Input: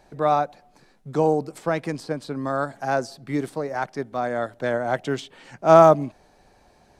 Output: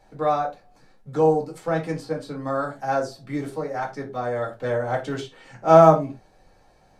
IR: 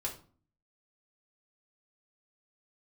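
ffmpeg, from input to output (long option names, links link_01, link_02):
-filter_complex "[1:a]atrim=start_sample=2205,atrim=end_sample=6615,asetrate=57330,aresample=44100[link_01];[0:a][link_01]afir=irnorm=-1:irlink=0,volume=-1dB"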